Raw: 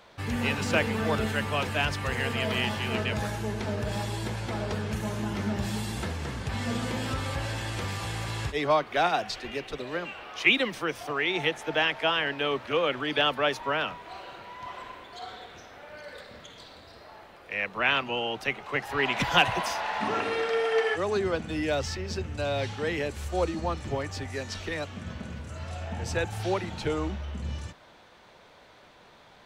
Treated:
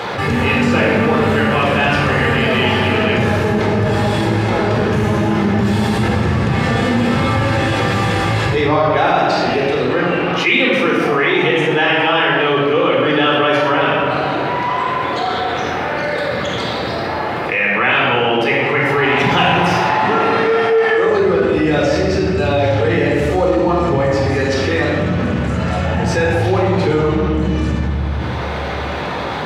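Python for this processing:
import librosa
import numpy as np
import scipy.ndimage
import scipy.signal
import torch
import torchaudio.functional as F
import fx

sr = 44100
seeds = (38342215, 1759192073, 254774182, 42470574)

y = scipy.signal.sosfilt(scipy.signal.butter(2, 120.0, 'highpass', fs=sr, output='sos'), x)
y = fx.high_shelf(y, sr, hz=3900.0, db=-11.5)
y = fx.room_shoebox(y, sr, seeds[0], volume_m3=1400.0, walls='mixed', distance_m=4.0)
y = fx.env_flatten(y, sr, amount_pct=70)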